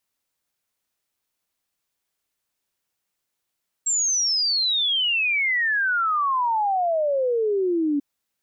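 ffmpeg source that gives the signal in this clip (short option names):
-f lavfi -i "aevalsrc='0.112*clip(min(t,4.14-t)/0.01,0,1)*sin(2*PI*7600*4.14/log(280/7600)*(exp(log(280/7600)*t/4.14)-1))':d=4.14:s=44100"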